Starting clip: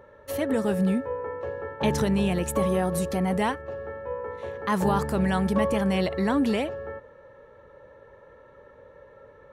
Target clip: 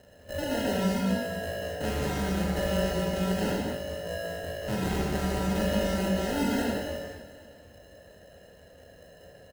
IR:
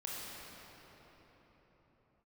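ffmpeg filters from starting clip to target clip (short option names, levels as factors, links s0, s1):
-filter_complex "[0:a]equalizer=f=75:t=o:w=0.53:g=12,acrusher=samples=38:mix=1:aa=0.000001,asoftclip=type=tanh:threshold=0.112,aecho=1:1:255|510|765|1020:0.168|0.0772|0.0355|0.0163[s0];[1:a]atrim=start_sample=2205,afade=t=out:st=0.31:d=0.01,atrim=end_sample=14112[s1];[s0][s1]afir=irnorm=-1:irlink=0,volume=0.841"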